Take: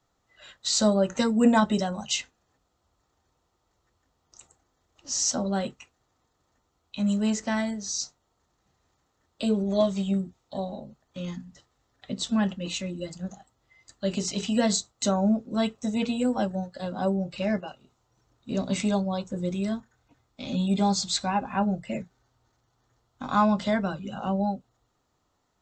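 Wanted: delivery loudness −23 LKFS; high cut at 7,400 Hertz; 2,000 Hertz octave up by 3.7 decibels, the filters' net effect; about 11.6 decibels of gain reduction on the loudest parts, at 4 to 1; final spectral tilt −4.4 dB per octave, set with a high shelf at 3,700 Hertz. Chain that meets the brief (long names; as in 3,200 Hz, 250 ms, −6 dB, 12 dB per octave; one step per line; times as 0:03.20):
low-pass filter 7,400 Hz
parametric band 2,000 Hz +6 dB
high-shelf EQ 3,700 Hz −4 dB
downward compressor 4 to 1, threshold −29 dBFS
level +10.5 dB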